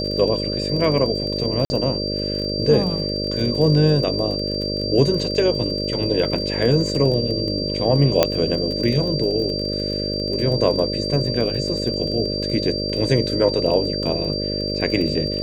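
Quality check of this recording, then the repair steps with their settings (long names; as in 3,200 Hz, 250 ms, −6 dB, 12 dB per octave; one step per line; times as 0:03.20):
mains buzz 50 Hz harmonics 12 −26 dBFS
surface crackle 27 per second −27 dBFS
whistle 4,700 Hz −26 dBFS
0:01.65–0:01.70: drop-out 50 ms
0:08.23: click 0 dBFS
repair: click removal
hum removal 50 Hz, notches 12
notch filter 4,700 Hz, Q 30
repair the gap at 0:01.65, 50 ms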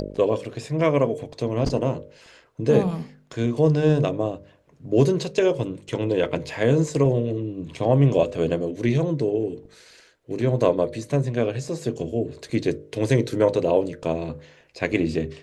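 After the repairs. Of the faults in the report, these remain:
none of them is left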